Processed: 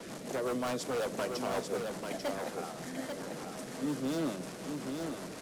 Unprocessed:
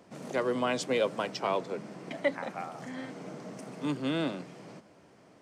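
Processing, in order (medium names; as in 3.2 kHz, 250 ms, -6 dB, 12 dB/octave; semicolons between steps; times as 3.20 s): one-bit delta coder 64 kbps, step -37.5 dBFS; in parallel at -3.5 dB: hard clipper -29 dBFS, distortion -8 dB; on the sum: rotary cabinet horn 5.5 Hz; gate with hold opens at -34 dBFS; on a send at -20 dB: reverberation RT60 0.40 s, pre-delay 3 ms; on the sum: wavefolder -24.5 dBFS; bass shelf 130 Hz -8.5 dB; delay 842 ms -5 dB; dynamic bell 2.7 kHz, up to -6 dB, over -49 dBFS, Q 0.88; trim -2 dB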